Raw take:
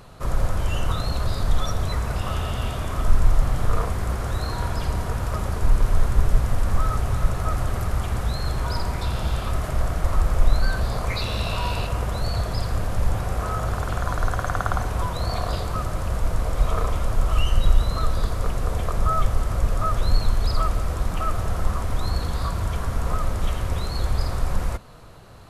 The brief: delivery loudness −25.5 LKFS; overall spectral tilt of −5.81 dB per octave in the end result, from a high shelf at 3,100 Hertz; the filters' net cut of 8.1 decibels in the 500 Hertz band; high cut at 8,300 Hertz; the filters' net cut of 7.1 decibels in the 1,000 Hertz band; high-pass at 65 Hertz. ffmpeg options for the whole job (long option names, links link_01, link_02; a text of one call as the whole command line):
ffmpeg -i in.wav -af "highpass=65,lowpass=8300,equalizer=frequency=500:width_type=o:gain=-8,equalizer=frequency=1000:width_type=o:gain=-7,highshelf=frequency=3100:gain=-3.5,volume=4.5dB" out.wav